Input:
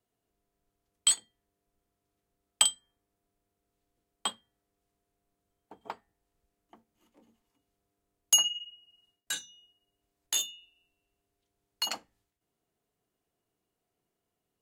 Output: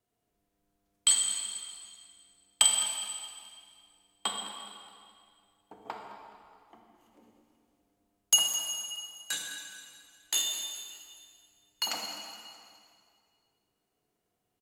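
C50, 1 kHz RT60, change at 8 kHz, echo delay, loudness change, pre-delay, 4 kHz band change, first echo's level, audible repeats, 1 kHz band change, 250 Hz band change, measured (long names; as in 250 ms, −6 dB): 2.0 dB, 2.2 s, +2.5 dB, 210 ms, 0.0 dB, 25 ms, +1.5 dB, −14.5 dB, 1, +3.0 dB, +3.5 dB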